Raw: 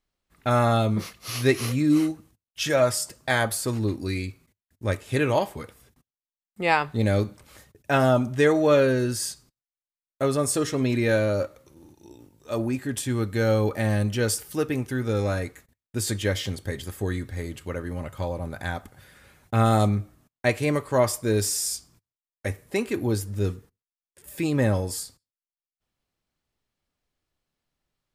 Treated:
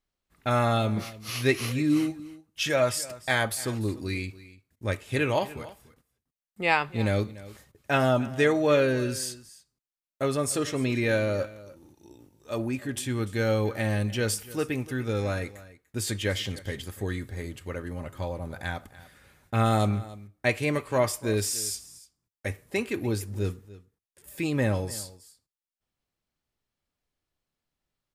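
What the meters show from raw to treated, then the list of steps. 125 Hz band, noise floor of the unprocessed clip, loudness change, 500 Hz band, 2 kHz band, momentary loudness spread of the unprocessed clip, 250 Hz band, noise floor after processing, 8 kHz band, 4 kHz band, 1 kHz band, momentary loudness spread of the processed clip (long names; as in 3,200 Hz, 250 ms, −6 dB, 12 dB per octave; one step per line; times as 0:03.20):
−3.5 dB, below −85 dBFS, −3.0 dB, −3.5 dB, −0.5 dB, 13 LU, −3.5 dB, below −85 dBFS, −3.0 dB, −1.0 dB, −3.0 dB, 13 LU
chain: dynamic equaliser 2,600 Hz, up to +5 dB, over −45 dBFS, Q 1.3
single-tap delay 293 ms −18.5 dB
level −3.5 dB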